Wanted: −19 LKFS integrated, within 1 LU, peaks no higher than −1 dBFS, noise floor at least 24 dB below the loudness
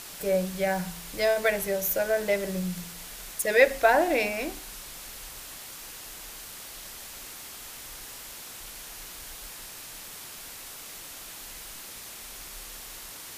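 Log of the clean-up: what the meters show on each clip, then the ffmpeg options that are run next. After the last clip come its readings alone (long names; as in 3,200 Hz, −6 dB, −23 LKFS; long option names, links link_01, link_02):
background noise floor −43 dBFS; target noise floor −55 dBFS; integrated loudness −30.5 LKFS; sample peak −5.5 dBFS; target loudness −19.0 LKFS
→ -af "afftdn=noise_reduction=12:noise_floor=-43"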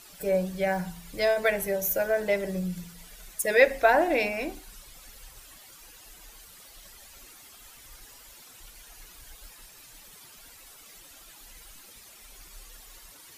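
background noise floor −51 dBFS; integrated loudness −26.0 LKFS; sample peak −5.5 dBFS; target loudness −19.0 LKFS
→ -af "volume=7dB,alimiter=limit=-1dB:level=0:latency=1"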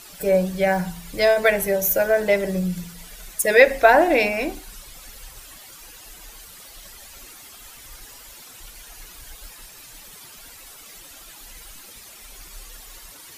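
integrated loudness −19.0 LKFS; sample peak −1.0 dBFS; background noise floor −44 dBFS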